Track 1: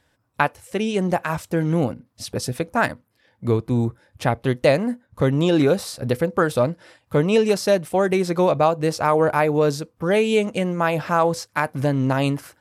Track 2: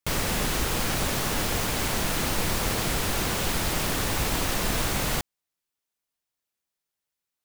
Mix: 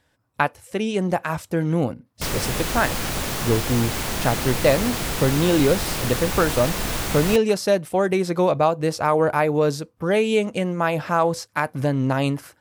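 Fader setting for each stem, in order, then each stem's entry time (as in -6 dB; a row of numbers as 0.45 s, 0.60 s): -1.0 dB, +0.5 dB; 0.00 s, 2.15 s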